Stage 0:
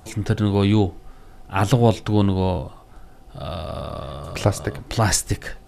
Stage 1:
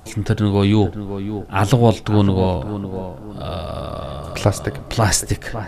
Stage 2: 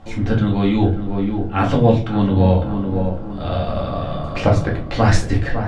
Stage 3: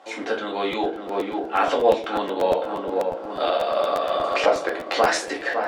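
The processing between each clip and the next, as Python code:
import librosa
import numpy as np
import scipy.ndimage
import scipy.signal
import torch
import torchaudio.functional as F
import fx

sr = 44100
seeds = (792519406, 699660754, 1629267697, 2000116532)

y1 = fx.echo_tape(x, sr, ms=554, feedback_pct=44, wet_db=-8, lp_hz=1200.0, drive_db=7.0, wow_cents=17)
y1 = F.gain(torch.from_numpy(y1), 2.5).numpy()
y2 = scipy.signal.sosfilt(scipy.signal.butter(2, 3600.0, 'lowpass', fs=sr, output='sos'), y1)
y2 = fx.rider(y2, sr, range_db=3, speed_s=0.5)
y2 = fx.room_shoebox(y2, sr, seeds[0], volume_m3=190.0, walls='furnished', distance_m=2.2)
y2 = F.gain(torch.from_numpy(y2), -3.5).numpy()
y3 = fx.recorder_agc(y2, sr, target_db=-8.5, rise_db_per_s=22.0, max_gain_db=30)
y3 = scipy.signal.sosfilt(scipy.signal.butter(4, 400.0, 'highpass', fs=sr, output='sos'), y3)
y3 = fx.buffer_crackle(y3, sr, first_s=0.71, period_s=0.12, block=512, kind='repeat')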